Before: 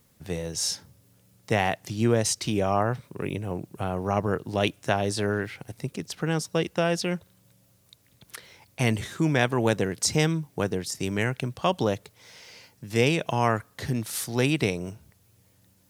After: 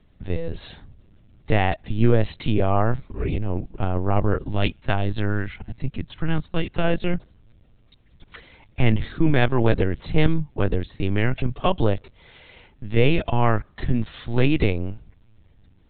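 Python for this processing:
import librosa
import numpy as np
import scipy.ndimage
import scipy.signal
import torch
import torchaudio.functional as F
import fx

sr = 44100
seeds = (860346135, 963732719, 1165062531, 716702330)

y = fx.peak_eq(x, sr, hz=460.0, db=-6.5, octaves=1.1, at=(4.49, 6.84))
y = fx.lpc_vocoder(y, sr, seeds[0], excitation='pitch_kept', order=16)
y = fx.low_shelf(y, sr, hz=180.0, db=10.0)
y = F.gain(torch.from_numpy(y), 1.5).numpy()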